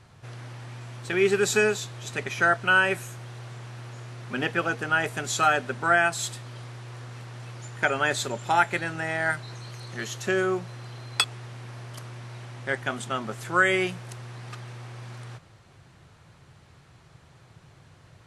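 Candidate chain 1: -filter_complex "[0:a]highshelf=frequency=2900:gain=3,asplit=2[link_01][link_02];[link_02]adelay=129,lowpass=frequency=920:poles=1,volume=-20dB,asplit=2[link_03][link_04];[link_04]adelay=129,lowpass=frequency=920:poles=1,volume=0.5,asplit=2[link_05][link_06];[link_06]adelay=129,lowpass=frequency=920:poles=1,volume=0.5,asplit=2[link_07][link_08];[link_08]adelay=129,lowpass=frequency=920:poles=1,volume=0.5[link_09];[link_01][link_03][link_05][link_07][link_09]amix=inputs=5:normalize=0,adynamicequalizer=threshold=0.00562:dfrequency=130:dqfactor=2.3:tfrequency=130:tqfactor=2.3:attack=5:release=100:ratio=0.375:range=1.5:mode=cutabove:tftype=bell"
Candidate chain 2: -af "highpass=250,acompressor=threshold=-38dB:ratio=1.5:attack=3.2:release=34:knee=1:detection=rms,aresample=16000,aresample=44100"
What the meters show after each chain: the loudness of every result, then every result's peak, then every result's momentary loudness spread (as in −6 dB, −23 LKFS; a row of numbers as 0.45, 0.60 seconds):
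−24.5, −32.5 LKFS; −3.5, −14.0 dBFS; 22, 17 LU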